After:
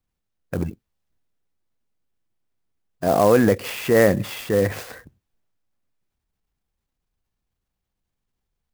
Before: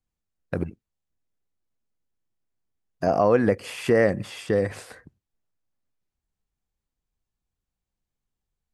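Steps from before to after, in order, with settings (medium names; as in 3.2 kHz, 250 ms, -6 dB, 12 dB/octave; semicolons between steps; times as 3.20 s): transient shaper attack -5 dB, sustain +3 dB; sampling jitter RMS 0.03 ms; trim +4.5 dB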